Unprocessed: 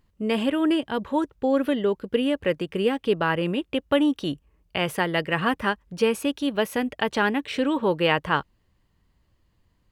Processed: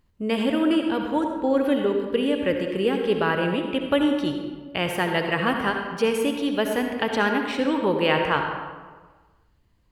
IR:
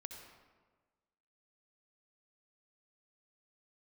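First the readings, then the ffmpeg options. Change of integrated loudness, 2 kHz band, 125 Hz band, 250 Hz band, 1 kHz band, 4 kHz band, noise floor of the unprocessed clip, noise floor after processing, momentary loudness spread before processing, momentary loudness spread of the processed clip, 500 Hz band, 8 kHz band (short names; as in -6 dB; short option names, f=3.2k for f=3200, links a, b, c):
+1.0 dB, +1.0 dB, 0.0 dB, +1.0 dB, +1.0 dB, +0.5 dB, -68 dBFS, -62 dBFS, 5 LU, 6 LU, +1.5 dB, 0.0 dB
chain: -filter_complex "[1:a]atrim=start_sample=2205[a];[0:a][a]afir=irnorm=-1:irlink=0,volume=5dB"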